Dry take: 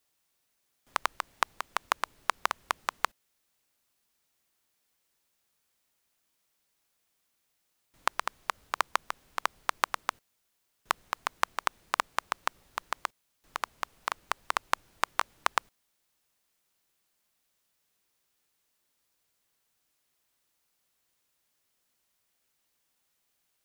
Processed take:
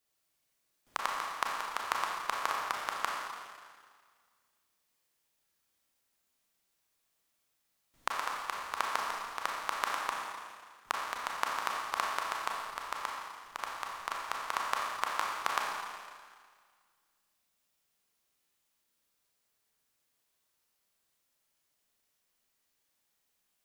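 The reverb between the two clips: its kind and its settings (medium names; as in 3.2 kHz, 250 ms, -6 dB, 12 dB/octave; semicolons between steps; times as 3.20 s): Schroeder reverb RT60 1.8 s, combs from 28 ms, DRR -2 dB; trim -6 dB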